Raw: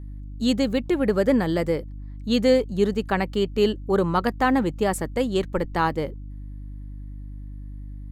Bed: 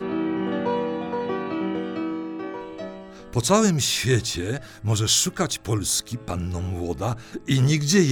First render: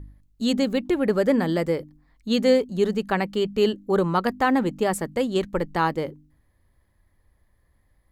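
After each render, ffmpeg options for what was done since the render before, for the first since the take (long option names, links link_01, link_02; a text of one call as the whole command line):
ffmpeg -i in.wav -af "bandreject=frequency=50:width_type=h:width=4,bandreject=frequency=100:width_type=h:width=4,bandreject=frequency=150:width_type=h:width=4,bandreject=frequency=200:width_type=h:width=4,bandreject=frequency=250:width_type=h:width=4,bandreject=frequency=300:width_type=h:width=4" out.wav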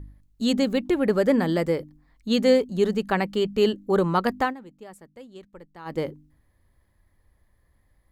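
ffmpeg -i in.wav -filter_complex "[0:a]asplit=3[link_01][link_02][link_03];[link_01]atrim=end=4.54,asetpts=PTS-STARTPTS,afade=type=out:start_time=4.41:duration=0.13:silence=0.0944061[link_04];[link_02]atrim=start=4.54:end=5.85,asetpts=PTS-STARTPTS,volume=-20.5dB[link_05];[link_03]atrim=start=5.85,asetpts=PTS-STARTPTS,afade=type=in:duration=0.13:silence=0.0944061[link_06];[link_04][link_05][link_06]concat=n=3:v=0:a=1" out.wav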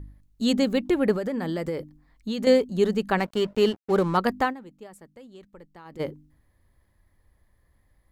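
ffmpeg -i in.wav -filter_complex "[0:a]asettb=1/sr,asplit=3[link_01][link_02][link_03];[link_01]atrim=end=1.124[link_04];[link_02]atrim=start=1.12:end=2.47,asetpts=PTS-STARTPTS,afade=type=in:duration=0.004:curve=qsin,afade=type=out:start_time=1.346:duration=0.004:curve=qsin,acompressor=threshold=-24dB:ratio=12:attack=3.2:release=140:knee=1:detection=peak[link_05];[link_03]atrim=start=2.466[link_06];[link_04][link_05]acrossfade=duration=0.004:curve1=hsin:curve2=qsin[link_07];[link_07][link_06]acrossfade=duration=0.004:curve1=qsin:curve2=hsin,asettb=1/sr,asplit=3[link_08][link_09][link_10];[link_08]atrim=end=3.184[link_11];[link_09]atrim=start=3.18:end=4.17,asetpts=PTS-STARTPTS,afade=type=in:duration=0.004:curve=qsin,afade=type=out:start_time=0.986:duration=0.004:curve=qsin,aeval=exprs='sgn(val(0))*max(abs(val(0))-0.0112,0)':channel_layout=same[link_12];[link_10]atrim=start=4.166[link_13];[link_11][link_12]acrossfade=duration=0.004:curve1=hsin:curve2=qsin[link_14];[link_14][link_13]acrossfade=duration=0.004:curve1=qsin:curve2=hsin,asplit=3[link_15][link_16][link_17];[link_15]afade=type=out:start_time=4.86:duration=0.02[link_18];[link_16]acompressor=threshold=-41dB:ratio=6:attack=3.2:release=140:knee=1:detection=peak,afade=type=in:start_time=4.86:duration=0.02,afade=type=out:start_time=5.99:duration=0.02[link_19];[link_17]afade=type=in:start_time=5.99:duration=0.02[link_20];[link_18][link_19][link_20]amix=inputs=3:normalize=0" out.wav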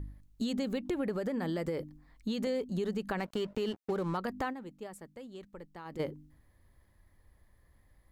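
ffmpeg -i in.wav -af "alimiter=limit=-18dB:level=0:latency=1:release=75,acompressor=threshold=-32dB:ratio=3" out.wav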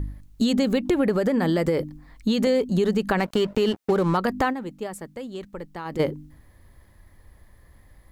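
ffmpeg -i in.wav -af "volume=12dB" out.wav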